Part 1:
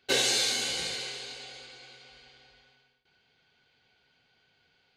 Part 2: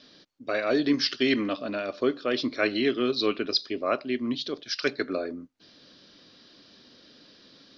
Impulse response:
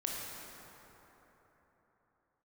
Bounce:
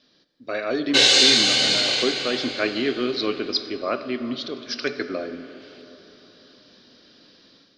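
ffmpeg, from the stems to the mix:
-filter_complex "[0:a]lowpass=6100,equalizer=frequency=3900:width=0.55:gain=8,adelay=850,volume=-0.5dB,asplit=2[link_01][link_02];[link_02]volume=-6dB[link_03];[1:a]bandreject=frequency=145:width_type=h:width=4,bandreject=frequency=290:width_type=h:width=4,bandreject=frequency=435:width_type=h:width=4,bandreject=frequency=580:width_type=h:width=4,bandreject=frequency=725:width_type=h:width=4,bandreject=frequency=870:width_type=h:width=4,bandreject=frequency=1015:width_type=h:width=4,bandreject=frequency=1160:width_type=h:width=4,bandreject=frequency=1305:width_type=h:width=4,bandreject=frequency=1450:width_type=h:width=4,bandreject=frequency=1595:width_type=h:width=4,bandreject=frequency=1740:width_type=h:width=4,bandreject=frequency=1885:width_type=h:width=4,bandreject=frequency=2030:width_type=h:width=4,bandreject=frequency=2175:width_type=h:width=4,bandreject=frequency=2320:width_type=h:width=4,bandreject=frequency=2465:width_type=h:width=4,bandreject=frequency=2610:width_type=h:width=4,bandreject=frequency=2755:width_type=h:width=4,bandreject=frequency=2900:width_type=h:width=4,bandreject=frequency=3045:width_type=h:width=4,bandreject=frequency=3190:width_type=h:width=4,bandreject=frequency=3335:width_type=h:width=4,bandreject=frequency=3480:width_type=h:width=4,bandreject=frequency=3625:width_type=h:width=4,bandreject=frequency=3770:width_type=h:width=4,bandreject=frequency=3915:width_type=h:width=4,volume=-9.5dB,asplit=3[link_04][link_05][link_06];[link_05]volume=-10dB[link_07];[link_06]apad=whole_len=256322[link_08];[link_01][link_08]sidechaincompress=threshold=-37dB:ratio=8:attack=16:release=1200[link_09];[2:a]atrim=start_sample=2205[link_10];[link_03][link_07]amix=inputs=2:normalize=0[link_11];[link_11][link_10]afir=irnorm=-1:irlink=0[link_12];[link_09][link_04][link_12]amix=inputs=3:normalize=0,dynaudnorm=framelen=260:gausssize=3:maxgain=8.5dB"

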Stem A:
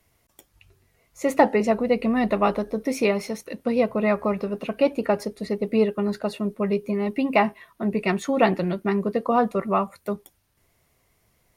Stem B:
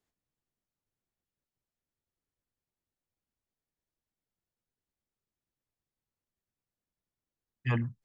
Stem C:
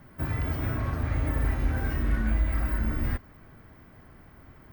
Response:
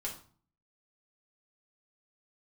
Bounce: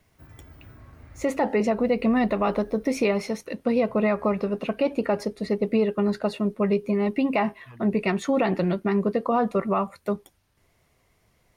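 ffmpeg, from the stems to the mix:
-filter_complex "[0:a]highshelf=frequency=9700:gain=-11,volume=1.5dB,asplit=2[link_01][link_02];[1:a]volume=-18.5dB[link_03];[2:a]volume=-19dB[link_04];[link_02]apad=whole_len=208349[link_05];[link_04][link_05]sidechaincompress=threshold=-28dB:ratio=8:attack=45:release=1240[link_06];[link_01][link_03][link_06]amix=inputs=3:normalize=0,alimiter=limit=-13.5dB:level=0:latency=1:release=85"

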